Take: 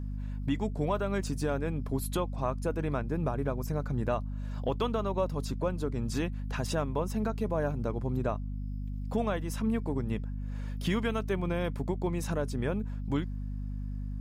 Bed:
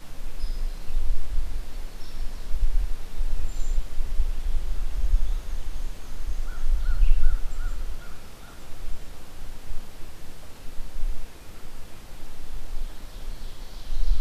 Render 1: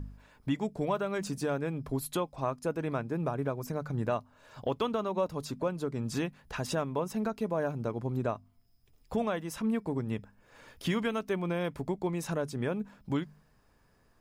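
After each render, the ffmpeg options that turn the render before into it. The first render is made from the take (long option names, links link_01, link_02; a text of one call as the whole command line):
ffmpeg -i in.wav -af "bandreject=frequency=50:width_type=h:width=4,bandreject=frequency=100:width_type=h:width=4,bandreject=frequency=150:width_type=h:width=4,bandreject=frequency=200:width_type=h:width=4,bandreject=frequency=250:width_type=h:width=4" out.wav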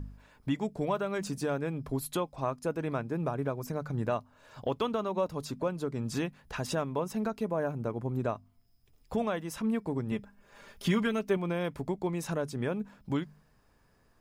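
ffmpeg -i in.wav -filter_complex "[0:a]asettb=1/sr,asplit=3[link_01][link_02][link_03];[link_01]atrim=end=7.454[link_04];[link_02]atrim=start=7.45:end=8.19,asetpts=PTS-STARTPTS,afade=type=in:duration=0.004:curve=qsin,afade=type=out:start_time=0.736:duration=0.004:curve=qsin,equalizer=frequency=4400:width_type=o:width=1.1:gain=-6.5[link_05];[link_03]atrim=start=8.186[link_06];[link_04][link_05]acrossfade=duration=0.004:curve1=hsin:curve2=qsin[link_07];[link_07][link_06]acrossfade=duration=0.004:curve1=qsin:curve2=hsin,asettb=1/sr,asplit=3[link_08][link_09][link_10];[link_08]atrim=end=10.114[link_11];[link_09]atrim=start=10.11:end=11.37,asetpts=PTS-STARTPTS,afade=type=in:duration=0.004:curve=qsin,afade=type=out:start_time=1.256:duration=0.004:curve=qsin,aecho=1:1:5:0.62,atrim=end_sample=55566[link_12];[link_10]atrim=start=11.366[link_13];[link_11][link_12]acrossfade=duration=0.004:curve1=hsin:curve2=qsin[link_14];[link_14][link_13]acrossfade=duration=0.004:curve1=qsin:curve2=hsin" out.wav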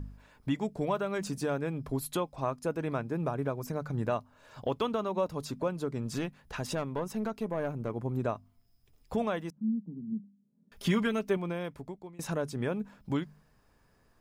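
ffmpeg -i in.wav -filter_complex "[0:a]asettb=1/sr,asplit=3[link_01][link_02][link_03];[link_01]atrim=end=5.984[link_04];[link_02]atrim=start=5.98:end=7.9,asetpts=PTS-STARTPTS,afade=type=in:duration=0.004:curve=qsin,afade=type=out:start_time=1.916:duration=0.004:curve=qsin,aeval=exprs='(tanh(15.8*val(0)+0.35)-tanh(0.35))/15.8':channel_layout=same[link_05];[link_03]atrim=start=7.896[link_06];[link_04][link_05]acrossfade=duration=0.004:curve1=hsin:curve2=qsin[link_07];[link_07][link_06]acrossfade=duration=0.004:curve1=qsin:curve2=hsin,asettb=1/sr,asplit=3[link_08][link_09][link_10];[link_08]atrim=end=9.504[link_11];[link_09]atrim=start=9.5:end=10.72,asetpts=PTS-STARTPTS,afade=type=in:duration=0.004:curve=qsin,afade=type=out:start_time=1.216:duration=0.004:curve=qsin,asuperpass=centerf=200:order=4:qfactor=2.4[link_12];[link_10]atrim=start=10.716[link_13];[link_11][link_12]acrossfade=duration=0.004:curve1=hsin:curve2=qsin[link_14];[link_14][link_13]acrossfade=duration=0.004:curve1=qsin:curve2=hsin,asplit=2[link_15][link_16];[link_15]atrim=end=12.19,asetpts=PTS-STARTPTS,afade=type=out:start_time=11.24:duration=0.95:silence=0.0749894[link_17];[link_16]atrim=start=12.19,asetpts=PTS-STARTPTS,afade=type=in:duration=0.004:curve=hsin:silence=0.0749894[link_18];[link_17][link_18]concat=n=2:v=0:a=1" out.wav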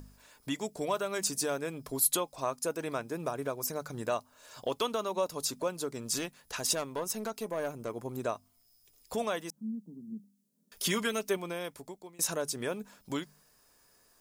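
ffmpeg -i in.wav -af "bass=frequency=250:gain=-11,treble=frequency=4000:gain=15,bandreject=frequency=820:width=20" out.wav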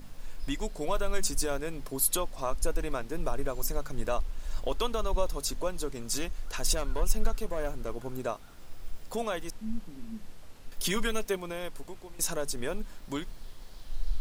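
ffmpeg -i in.wav -i bed.wav -filter_complex "[1:a]volume=-9dB[link_01];[0:a][link_01]amix=inputs=2:normalize=0" out.wav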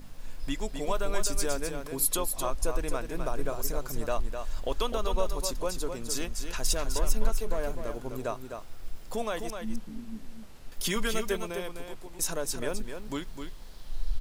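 ffmpeg -i in.wav -af "aecho=1:1:256:0.447" out.wav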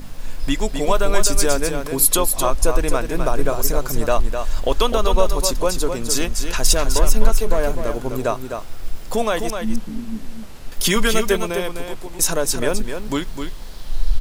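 ffmpeg -i in.wav -af "volume=12dB,alimiter=limit=-1dB:level=0:latency=1" out.wav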